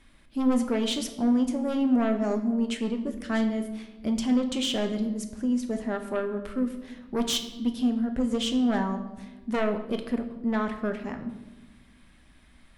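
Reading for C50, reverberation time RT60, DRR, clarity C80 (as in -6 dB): 10.0 dB, 1.1 s, 6.0 dB, 12.0 dB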